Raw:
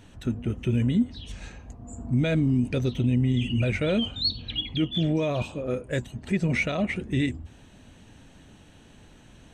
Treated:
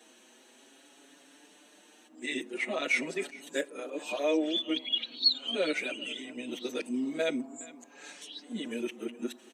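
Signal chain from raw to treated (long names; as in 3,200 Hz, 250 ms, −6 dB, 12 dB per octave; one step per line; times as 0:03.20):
played backwards from end to start
Butterworth high-pass 270 Hz 36 dB per octave
high-shelf EQ 5,400 Hz +9.5 dB
single-tap delay 416 ms −20.5 dB
on a send at −20 dB: convolution reverb RT60 0.50 s, pre-delay 7 ms
on the sum: barber-pole flanger 6 ms +0.44 Hz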